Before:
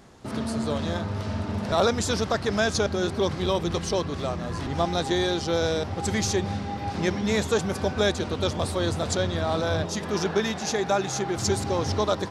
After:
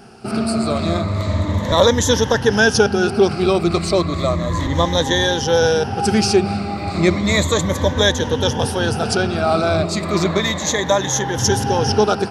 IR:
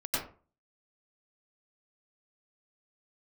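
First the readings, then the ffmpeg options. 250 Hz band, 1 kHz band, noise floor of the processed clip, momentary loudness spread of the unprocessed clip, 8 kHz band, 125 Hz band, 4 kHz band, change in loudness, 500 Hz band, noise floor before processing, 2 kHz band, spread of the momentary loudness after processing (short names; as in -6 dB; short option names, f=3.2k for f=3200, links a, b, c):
+8.5 dB, +8.5 dB, -25 dBFS, 6 LU, +9.0 dB, +8.5 dB, +9.5 dB, +9.0 dB, +8.5 dB, -34 dBFS, +10.5 dB, 6 LU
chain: -af "afftfilt=real='re*pow(10,13/40*sin(2*PI*(1.1*log(max(b,1)*sr/1024/100)/log(2)-(-0.33)*(pts-256)/sr)))':imag='im*pow(10,13/40*sin(2*PI*(1.1*log(max(b,1)*sr/1024/100)/log(2)-(-0.33)*(pts-256)/sr)))':win_size=1024:overlap=0.75,volume=7dB"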